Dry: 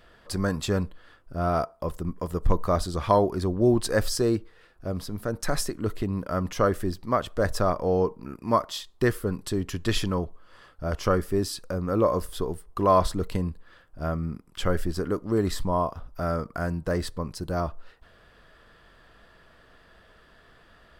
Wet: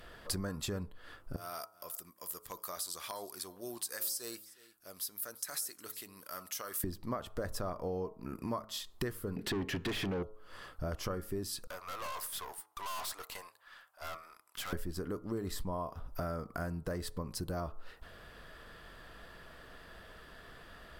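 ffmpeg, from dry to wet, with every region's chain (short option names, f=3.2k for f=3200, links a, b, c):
-filter_complex "[0:a]asettb=1/sr,asplit=3[a][b][c];[a]atrim=end=1.364[d];[b]atrim=start=1.36:end=6.84,asetpts=PTS-STARTPTS,afade=t=in:d=0.004:c=qsin,afade=t=out:st=5.476:d=0.004:c=qsin,aderivative,acompressor=threshold=-39dB:ratio=6:attack=3.2:release=140:knee=1:detection=peak,aecho=1:1:360:0.1,atrim=end_sample=241668[e];[c]atrim=start=6.836[f];[d][e]acrossfade=d=0.004:c1=hsin:c2=qsin[g];[g][f]acrossfade=d=0.004:c1=qsin:c2=hsin,asettb=1/sr,asplit=3[h][i][j];[h]atrim=end=9.364[k];[i]atrim=start=9.36:end=10.23,asetpts=PTS-STARTPTS,afade=t=in:d=0.004:c=qsin,afade=t=out:st=0.866:d=0.004:c=qsin,asuperstop=centerf=870:order=8:qfactor=0.77,equalizer=f=8.6k:t=o:w=2.1:g=-12,asplit=2[l][m];[m]highpass=f=720:p=1,volume=32dB,asoftclip=type=tanh:threshold=-12.5dB[n];[l][n]amix=inputs=2:normalize=0,lowpass=f=1.8k:p=1,volume=-6dB[o];[j]atrim=start=10.226[p];[k][o]acrossfade=d=0.004:c1=hsin:c2=qsin[q];[q][p]acrossfade=d=0.004:c1=qsin:c2=hsin,asettb=1/sr,asplit=3[r][s][t];[r]atrim=end=11.674[u];[s]atrim=start=11.67:end=14.73,asetpts=PTS-STARTPTS,afade=t=in:d=0.004:c=qsin,afade=t=out:st=3.056:d=0.004:c=qsin,highpass=f=750:w=0.5412,highpass=f=750:w=1.3066,aeval=exprs='(tanh(112*val(0)+0.55)-tanh(0.55))/112':c=same[v];[t]atrim=start=14.726[w];[u][v]acrossfade=d=0.004:c1=hsin:c2=qsin[x];[x][w]acrossfade=d=0.004:c1=qsin:c2=hsin,acompressor=threshold=-38dB:ratio=6,equalizer=f=14k:w=0.74:g=8.5,bandreject=f=107.6:t=h:w=4,bandreject=f=215.2:t=h:w=4,bandreject=f=322.8:t=h:w=4,bandreject=f=430.4:t=h:w=4,bandreject=f=538:t=h:w=4,bandreject=f=645.6:t=h:w=4,bandreject=f=753.2:t=h:w=4,bandreject=f=860.8:t=h:w=4,bandreject=f=968.4:t=h:w=4,bandreject=f=1.076k:t=h:w=4,bandreject=f=1.1836k:t=h:w=4,bandreject=f=1.2912k:t=h:w=4,bandreject=f=1.3988k:t=h:w=4,volume=2.5dB"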